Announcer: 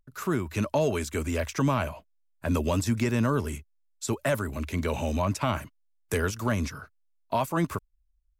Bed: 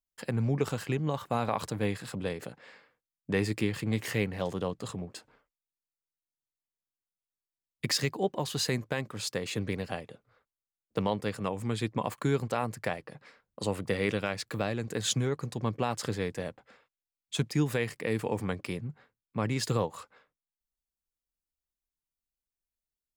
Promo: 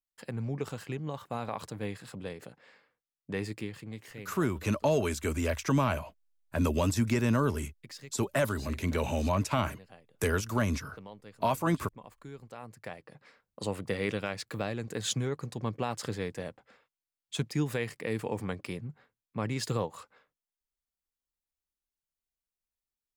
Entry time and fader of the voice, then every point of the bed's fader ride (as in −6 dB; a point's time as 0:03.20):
4.10 s, −1.5 dB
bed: 0:03.45 −6 dB
0:04.35 −18 dB
0:12.36 −18 dB
0:13.34 −2.5 dB